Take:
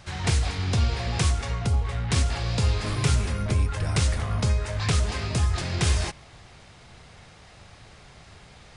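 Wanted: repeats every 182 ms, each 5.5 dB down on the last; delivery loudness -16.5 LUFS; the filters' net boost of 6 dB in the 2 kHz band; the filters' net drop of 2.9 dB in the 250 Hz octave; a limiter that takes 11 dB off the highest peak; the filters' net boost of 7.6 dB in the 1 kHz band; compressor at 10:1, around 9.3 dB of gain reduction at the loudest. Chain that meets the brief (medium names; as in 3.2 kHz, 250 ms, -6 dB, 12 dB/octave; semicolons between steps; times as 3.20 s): peaking EQ 250 Hz -5.5 dB; peaking EQ 1 kHz +8.5 dB; peaking EQ 2 kHz +5 dB; compression 10:1, threshold -27 dBFS; peak limiter -25.5 dBFS; feedback delay 182 ms, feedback 53%, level -5.5 dB; trim +17.5 dB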